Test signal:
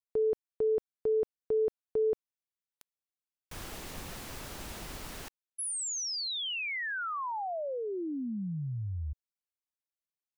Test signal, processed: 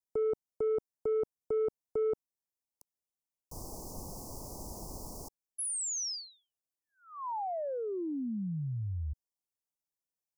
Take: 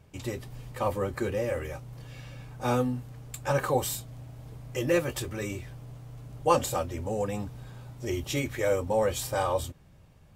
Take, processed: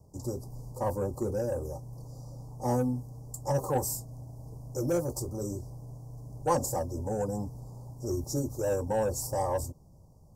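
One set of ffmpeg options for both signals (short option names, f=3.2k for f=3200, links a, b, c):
-filter_complex "[0:a]asuperstop=centerf=2300:order=12:qfactor=0.58,acrossover=split=310|720|6600[a][b][c][d];[b]asoftclip=type=tanh:threshold=-30.5dB[e];[a][e][c][d]amix=inputs=4:normalize=0"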